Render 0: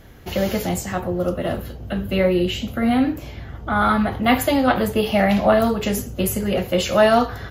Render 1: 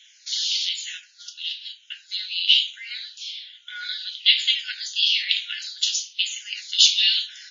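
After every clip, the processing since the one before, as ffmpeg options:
-filter_complex "[0:a]highshelf=f=2.4k:t=q:w=3:g=13.5,afftfilt=real='re*between(b*sr/4096,1400,7100)':imag='im*between(b*sr/4096,1400,7100)':win_size=4096:overlap=0.75,asplit=2[a][b];[b]afreqshift=-1.1[c];[a][c]amix=inputs=2:normalize=1,volume=-3dB"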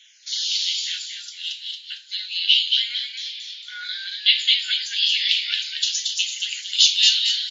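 -filter_complex "[0:a]asplit=6[a][b][c][d][e][f];[b]adelay=227,afreqshift=120,volume=-3.5dB[g];[c]adelay=454,afreqshift=240,volume=-11.5dB[h];[d]adelay=681,afreqshift=360,volume=-19.4dB[i];[e]adelay=908,afreqshift=480,volume=-27.4dB[j];[f]adelay=1135,afreqshift=600,volume=-35.3dB[k];[a][g][h][i][j][k]amix=inputs=6:normalize=0"

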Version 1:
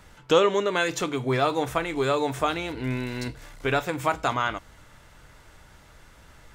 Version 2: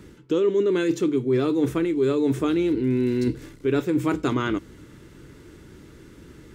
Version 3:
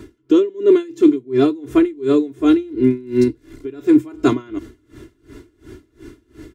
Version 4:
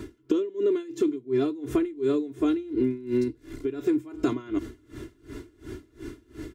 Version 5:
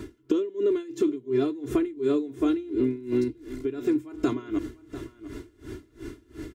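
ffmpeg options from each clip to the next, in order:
-af "highpass=f=150:p=1,lowshelf=f=500:t=q:w=3:g=11.5,areverse,acompressor=threshold=-19dB:ratio=6,areverse"
-af "equalizer=f=210:t=o:w=2.9:g=4.5,aecho=1:1:2.9:0.94,aeval=exprs='val(0)*pow(10,-26*(0.5-0.5*cos(2*PI*2.8*n/s))/20)':c=same,volume=4dB"
-af "acompressor=threshold=-21dB:ratio=16"
-af "aecho=1:1:695:0.188"

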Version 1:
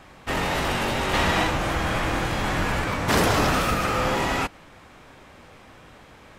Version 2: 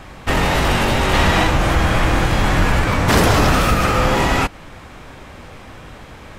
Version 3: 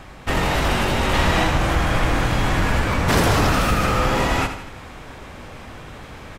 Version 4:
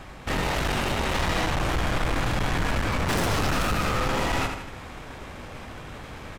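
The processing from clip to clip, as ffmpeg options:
-filter_complex "[0:a]lowshelf=f=110:g=8,asplit=2[a][b];[b]alimiter=limit=-17.5dB:level=0:latency=1:release=218,volume=2.5dB[c];[a][c]amix=inputs=2:normalize=0,volume=1.5dB"
-af "areverse,acompressor=mode=upward:threshold=-27dB:ratio=2.5,areverse,aecho=1:1:81|162|243|324|405:0.335|0.161|0.0772|0.037|0.0178,volume=-4dB"
-af "aeval=exprs='(tanh(12.6*val(0)+0.45)-tanh(0.45))/12.6':c=same"

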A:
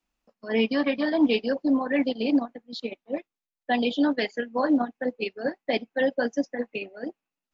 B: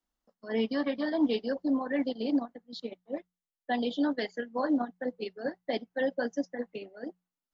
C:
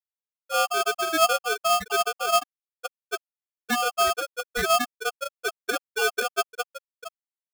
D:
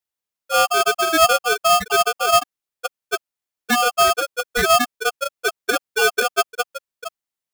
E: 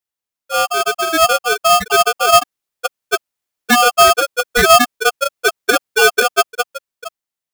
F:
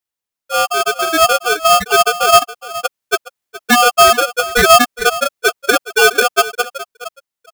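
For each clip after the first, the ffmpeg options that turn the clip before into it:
-af "equalizer=f=2.5k:w=5.9:g=-13,bandreject=f=60:t=h:w=6,bandreject=f=120:t=h:w=6,bandreject=f=180:t=h:w=6,volume=-5.5dB"
-af "afftfilt=real='re*gte(hypot(re,im),0.158)':imag='im*gte(hypot(re,im),0.158)':win_size=1024:overlap=0.75,aeval=exprs='val(0)*sgn(sin(2*PI*970*n/s))':c=same,volume=6dB"
-af "asoftclip=type=tanh:threshold=-13.5dB,volume=7.5dB"
-af "dynaudnorm=f=460:g=7:m=9.5dB"
-af "aecho=1:1:418:0.158,volume=1dB"

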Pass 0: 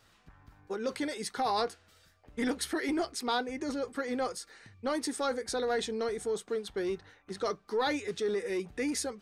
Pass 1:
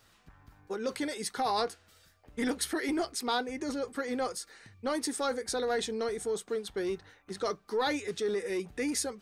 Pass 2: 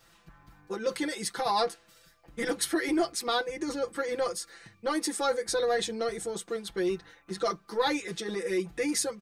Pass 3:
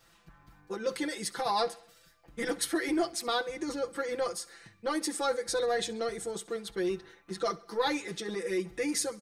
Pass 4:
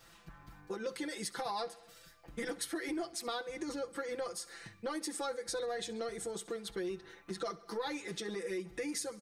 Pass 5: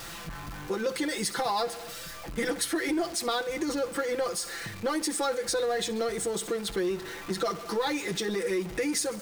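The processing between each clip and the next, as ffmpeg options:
-af "highshelf=f=8.7k:g=6.5"
-af "aecho=1:1:5.9:0.97"
-af "aecho=1:1:66|132|198|264:0.0891|0.0472|0.025|0.0133,volume=-2dB"
-af "acompressor=threshold=-42dB:ratio=3,volume=3dB"
-af "aeval=exprs='val(0)+0.5*0.00531*sgn(val(0))':c=same,volume=8dB"

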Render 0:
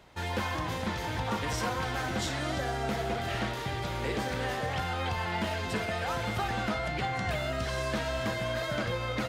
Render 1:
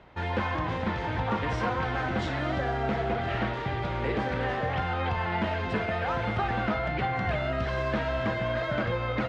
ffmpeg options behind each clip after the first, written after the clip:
-af "lowpass=2.5k,volume=3.5dB"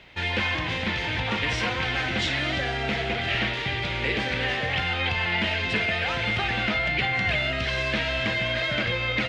-af "highshelf=f=1.7k:t=q:w=1.5:g=11.5"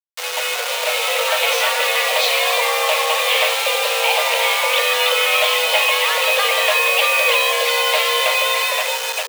-af "dynaudnorm=f=170:g=9:m=8dB,acrusher=bits=3:mix=0:aa=0.000001,afreqshift=410,volume=1dB"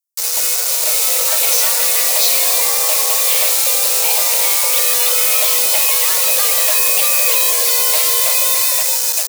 -af "aexciter=amount=5.7:drive=7.8:freq=4.5k,volume=-6dB"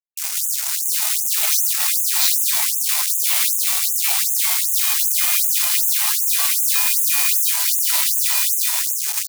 -af "afreqshift=-62,aeval=exprs='1*(cos(1*acos(clip(val(0)/1,-1,1)))-cos(1*PI/2))+0.141*(cos(7*acos(clip(val(0)/1,-1,1)))-cos(7*PI/2))':c=same,afftfilt=real='re*gte(b*sr/1024,600*pow(6300/600,0.5+0.5*sin(2*PI*2.6*pts/sr)))':imag='im*gte(b*sr/1024,600*pow(6300/600,0.5+0.5*sin(2*PI*2.6*pts/sr)))':win_size=1024:overlap=0.75,volume=-1.5dB"

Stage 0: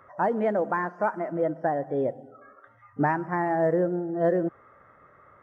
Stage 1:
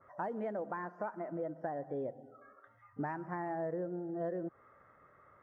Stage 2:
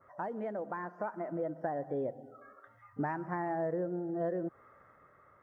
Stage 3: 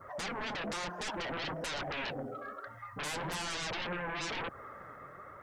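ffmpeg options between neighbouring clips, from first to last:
-af "acompressor=threshold=-29dB:ratio=3,adynamicequalizer=threshold=0.00562:dfrequency=1700:dqfactor=0.7:tfrequency=1700:tqfactor=0.7:attack=5:release=100:ratio=0.375:range=2.5:mode=cutabove:tftype=highshelf,volume=-7.5dB"
-af "dynaudnorm=f=300:g=7:m=3.5dB"
-af "aeval=exprs='0.0631*sin(PI/2*8.91*val(0)/0.0631)':c=same,flanger=delay=0.6:depth=8:regen=58:speed=1.1:shape=triangular,volume=-6.5dB"

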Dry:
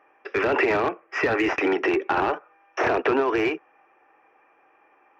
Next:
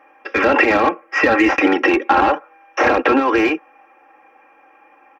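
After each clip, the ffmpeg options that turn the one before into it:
-af "aecho=1:1:3.7:0.82,volume=6.5dB"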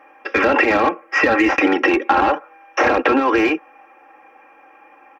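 -af "acompressor=threshold=-17dB:ratio=2,volume=2.5dB"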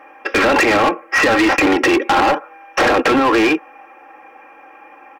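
-af "acontrast=81,asoftclip=type=hard:threshold=-9dB,volume=-1.5dB"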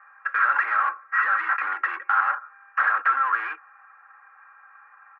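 -af "asuperpass=centerf=1400:order=4:qfactor=2.7"

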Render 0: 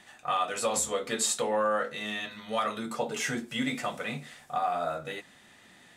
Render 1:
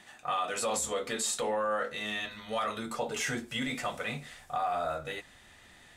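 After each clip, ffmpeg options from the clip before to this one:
-af "alimiter=limit=-22.5dB:level=0:latency=1:release=13,asubboost=boost=8.5:cutoff=66"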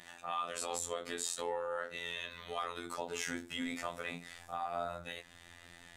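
-af "acompressor=threshold=-47dB:ratio=1.5,afftfilt=real='hypot(re,im)*cos(PI*b)':imag='0':win_size=2048:overlap=0.75,volume=3.5dB"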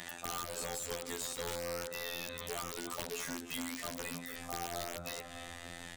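-filter_complex "[0:a]asplit=2[a][b];[b]adelay=298,lowpass=f=3.1k:p=1,volume=-17dB,asplit=2[c][d];[d]adelay=298,lowpass=f=3.1k:p=1,volume=0.47,asplit=2[e][f];[f]adelay=298,lowpass=f=3.1k:p=1,volume=0.47,asplit=2[g][h];[h]adelay=298,lowpass=f=3.1k:p=1,volume=0.47[i];[a][c][e][g][i]amix=inputs=5:normalize=0,aeval=exprs='(mod(33.5*val(0)+1,2)-1)/33.5':c=same,acrossover=split=540|4300[j][k][l];[j]acompressor=threshold=-54dB:ratio=4[m];[k]acompressor=threshold=-55dB:ratio=4[n];[l]acompressor=threshold=-50dB:ratio=4[o];[m][n][o]amix=inputs=3:normalize=0,volume=10dB"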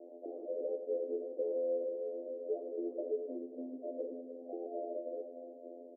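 -af "asuperpass=centerf=420:order=12:qfactor=1.2,aecho=1:1:109:0.299,volume=8dB"

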